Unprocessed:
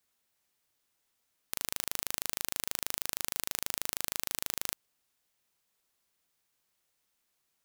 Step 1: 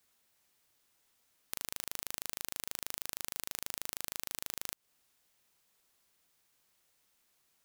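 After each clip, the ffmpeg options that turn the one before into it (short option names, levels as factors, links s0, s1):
-af "acompressor=threshold=0.0141:ratio=5,volume=1.68"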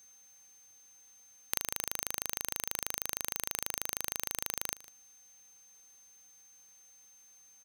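-af "acrusher=bits=3:mode=log:mix=0:aa=0.000001,aeval=exprs='val(0)+0.000794*sin(2*PI*6300*n/s)':c=same,aecho=1:1:152:0.112,volume=1.88"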